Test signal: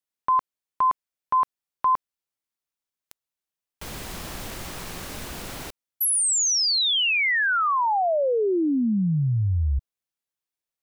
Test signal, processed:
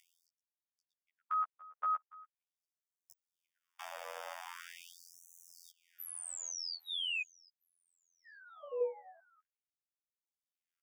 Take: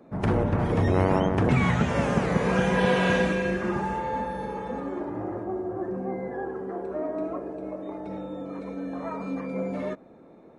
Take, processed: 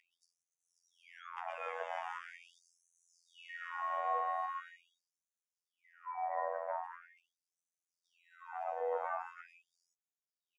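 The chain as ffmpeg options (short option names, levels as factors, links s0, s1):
-af "acompressor=threshold=0.0355:ratio=6:attack=15:release=885:knee=1:detection=rms,afftfilt=real='hypot(re,im)*cos(PI*b)':imag='0':win_size=2048:overlap=0.75,highshelf=f=6300:g=-4,aecho=1:1:806|1612:0.0631|0.0133,afreqshift=230,acompressor=mode=upward:threshold=0.00316:ratio=2.5:attack=32:release=656:knee=2.83:detection=peak,alimiter=level_in=1.41:limit=0.0631:level=0:latency=1:release=196,volume=0.708,asuperstop=centerf=4100:order=8:qfactor=5.2,highshelf=f=2600:g=-12,afftfilt=real='re*gte(b*sr/1024,460*pow(5900/460,0.5+0.5*sin(2*PI*0.42*pts/sr)))':imag='im*gte(b*sr/1024,460*pow(5900/460,0.5+0.5*sin(2*PI*0.42*pts/sr)))':win_size=1024:overlap=0.75,volume=1.58"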